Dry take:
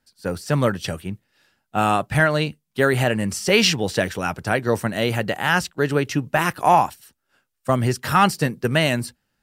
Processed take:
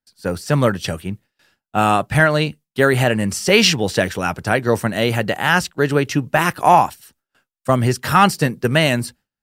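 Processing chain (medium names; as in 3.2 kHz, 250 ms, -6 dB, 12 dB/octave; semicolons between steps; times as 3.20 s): gate with hold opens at -51 dBFS; trim +3.5 dB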